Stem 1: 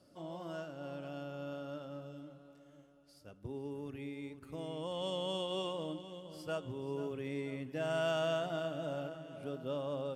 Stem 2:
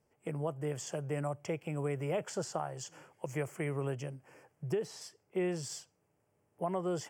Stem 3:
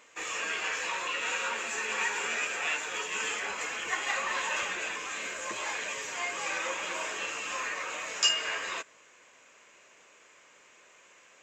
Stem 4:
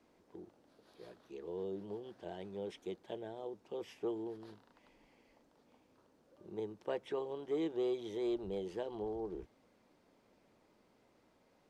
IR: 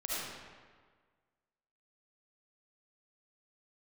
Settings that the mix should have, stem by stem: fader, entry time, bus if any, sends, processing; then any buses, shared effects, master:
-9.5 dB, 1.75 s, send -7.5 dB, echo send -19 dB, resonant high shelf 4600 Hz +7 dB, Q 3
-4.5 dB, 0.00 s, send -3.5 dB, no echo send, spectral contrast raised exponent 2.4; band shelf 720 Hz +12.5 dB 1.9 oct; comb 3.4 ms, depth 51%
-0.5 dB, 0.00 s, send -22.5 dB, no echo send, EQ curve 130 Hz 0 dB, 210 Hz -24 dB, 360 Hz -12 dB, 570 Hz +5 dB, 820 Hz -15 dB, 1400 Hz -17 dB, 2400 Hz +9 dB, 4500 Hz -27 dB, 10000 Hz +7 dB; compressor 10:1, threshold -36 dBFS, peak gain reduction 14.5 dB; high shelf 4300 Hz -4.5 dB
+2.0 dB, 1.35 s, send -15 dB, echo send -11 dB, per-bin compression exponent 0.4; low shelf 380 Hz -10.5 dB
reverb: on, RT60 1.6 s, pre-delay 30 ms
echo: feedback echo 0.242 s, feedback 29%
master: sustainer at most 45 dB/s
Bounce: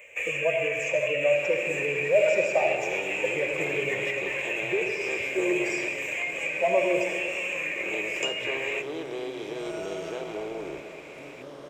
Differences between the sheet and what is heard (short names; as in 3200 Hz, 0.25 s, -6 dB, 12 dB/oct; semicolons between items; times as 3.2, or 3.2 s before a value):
stem 3 -0.5 dB -> +9.0 dB; master: missing sustainer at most 45 dB/s